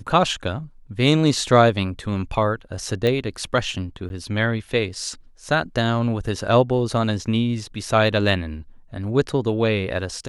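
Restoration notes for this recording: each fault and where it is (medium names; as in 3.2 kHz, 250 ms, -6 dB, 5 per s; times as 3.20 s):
3.07 s: pop -11 dBFS
4.09–4.10 s: dropout 11 ms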